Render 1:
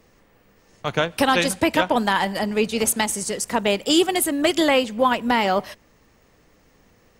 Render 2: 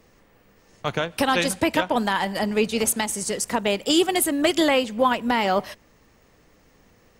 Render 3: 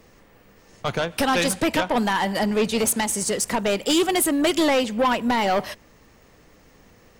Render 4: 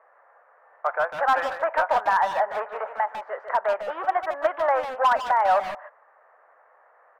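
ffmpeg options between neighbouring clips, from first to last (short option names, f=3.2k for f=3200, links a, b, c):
-af "alimiter=limit=-9dB:level=0:latency=1:release=291"
-af "asoftclip=type=tanh:threshold=-19dB,volume=4dB"
-filter_complex "[0:a]asuperpass=centerf=1000:order=8:qfactor=0.91,volume=17dB,asoftclip=hard,volume=-17dB,asplit=2[a][b];[b]adelay=150,highpass=300,lowpass=3.4k,asoftclip=type=hard:threshold=-26.5dB,volume=-7dB[c];[a][c]amix=inputs=2:normalize=0,volume=3.5dB"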